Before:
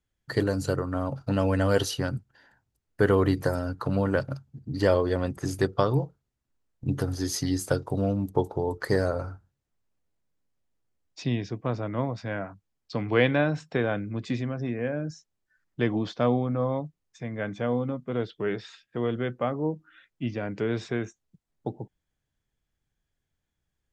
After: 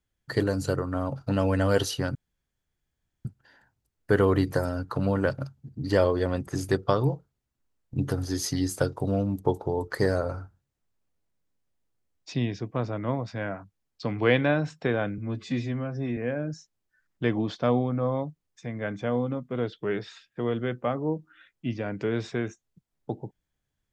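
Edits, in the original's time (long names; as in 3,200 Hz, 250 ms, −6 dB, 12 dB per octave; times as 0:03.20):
0:02.15: splice in room tone 1.10 s
0:14.08–0:14.74: time-stretch 1.5×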